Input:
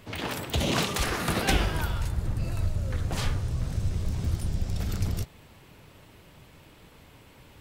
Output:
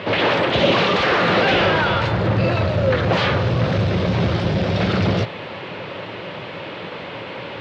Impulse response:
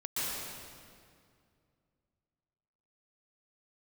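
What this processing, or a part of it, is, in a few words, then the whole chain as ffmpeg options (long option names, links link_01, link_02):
overdrive pedal into a guitar cabinet: -filter_complex "[0:a]asplit=2[link_01][link_02];[link_02]highpass=frequency=720:poles=1,volume=32dB,asoftclip=type=tanh:threshold=-10dB[link_03];[link_01][link_03]amix=inputs=2:normalize=0,lowpass=frequency=3500:poles=1,volume=-6dB,highpass=87,equalizer=frequency=110:width_type=q:width=4:gain=8,equalizer=frequency=180:width_type=q:width=4:gain=7,equalizer=frequency=360:width_type=q:width=4:gain=4,equalizer=frequency=540:width_type=q:width=4:gain=8,lowpass=frequency=4100:width=0.5412,lowpass=frequency=4100:width=1.3066"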